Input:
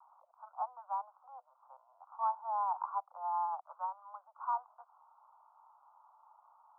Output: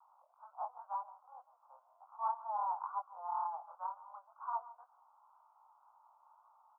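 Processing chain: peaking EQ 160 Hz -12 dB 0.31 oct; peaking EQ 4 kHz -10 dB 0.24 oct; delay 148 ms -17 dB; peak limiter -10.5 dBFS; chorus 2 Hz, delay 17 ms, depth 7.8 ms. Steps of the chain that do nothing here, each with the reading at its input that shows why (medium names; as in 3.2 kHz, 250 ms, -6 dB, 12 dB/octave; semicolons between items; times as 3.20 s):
peaking EQ 160 Hz: input has nothing below 540 Hz; peaking EQ 4 kHz: input has nothing above 1.4 kHz; peak limiter -10.5 dBFS: peak at its input -23.5 dBFS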